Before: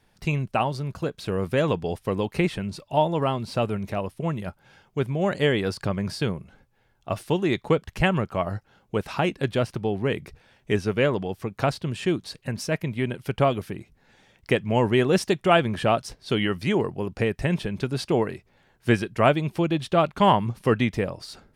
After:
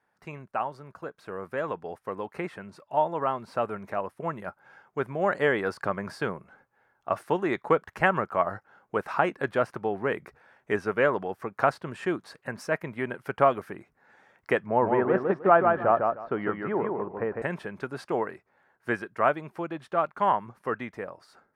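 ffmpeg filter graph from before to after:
-filter_complex "[0:a]asettb=1/sr,asplit=3[s0][s1][s2];[s0]atrim=end=14.664[s3];[s1]atrim=start=14.66:end=17.42,asetpts=PTS-STARTPTS,afade=t=in:d=0.004:c=qsin,afade=t=out:st=2.756:d=0.004:c=qsin,lowpass=1300,aecho=1:1:153|306|459:0.631|0.126|0.0252,atrim=end_sample=121716[s4];[s2]atrim=start=17.416[s5];[s3][s4]acrossfade=d=0.004:c1=hsin:c2=qsin[s6];[s6][s5]acrossfade=d=0.004:c1=qsin:c2=hsin,highpass=f=780:p=1,highshelf=f=2200:t=q:w=1.5:g=-13,dynaudnorm=f=680:g=11:m=3.76,volume=0.631"

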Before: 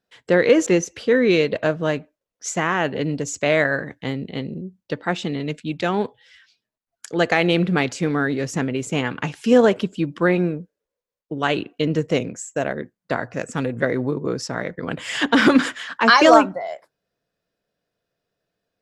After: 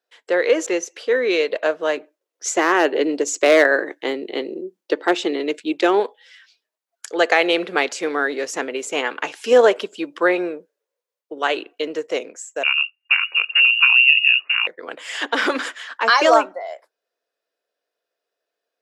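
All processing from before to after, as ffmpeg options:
-filter_complex "[0:a]asettb=1/sr,asplit=3[s0][s1][s2];[s0]atrim=end=1.974[s3];[s1]atrim=start=1.97:end=6,asetpts=PTS-STARTPTS,afade=t=in:d=0.004:c=qsin,afade=t=out:st=4.026:d=0.004:c=qsin,equalizer=f=340:t=o:w=0.62:g=10.5,asoftclip=type=hard:threshold=0.422[s4];[s2]atrim=start=5.996[s5];[s3][s4]acrossfade=d=0.004:c1=hsin:c2=qsin[s6];[s6][s5]acrossfade=d=0.004:c1=qsin:c2=hsin,asettb=1/sr,asplit=3[s7][s8][s9];[s7]atrim=end=12.634[s10];[s8]atrim=start=12.63:end=14.67,asetpts=PTS-STARTPTS,afade=t=in:d=0.004:c=qsin,afade=t=out:st=2.036:d=0.004:c=qsin,equalizer=f=230:t=o:w=2.4:g=15,lowpass=f=2600:t=q:w=0.5098,lowpass=f=2600:t=q:w=0.6013,lowpass=f=2600:t=q:w=0.9,lowpass=f=2600:t=q:w=2.563,afreqshift=-3000[s11];[s9]atrim=start=14.666[s12];[s10][s11]acrossfade=d=0.004:c1=hsin:c2=qsin[s13];[s13][s12]acrossfade=d=0.004:c1=qsin:c2=hsin,highpass=f=380:w=0.5412,highpass=f=380:w=1.3066,dynaudnorm=f=160:g=21:m=3.76,volume=0.891"

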